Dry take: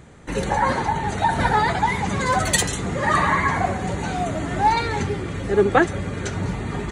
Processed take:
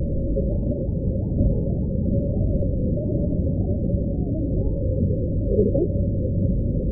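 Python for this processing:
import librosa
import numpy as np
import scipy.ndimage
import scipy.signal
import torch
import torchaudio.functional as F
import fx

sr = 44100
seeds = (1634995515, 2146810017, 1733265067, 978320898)

y = fx.delta_mod(x, sr, bps=16000, step_db=-20.5)
y = scipy.signal.sosfilt(scipy.signal.cheby1(6, 1.0, 550.0, 'lowpass', fs=sr, output='sos'), y)
y = fx.tilt_eq(y, sr, slope=-3.5)
y = fx.formant_shift(y, sr, semitones=2)
y = F.gain(torch.from_numpy(y), -5.5).numpy()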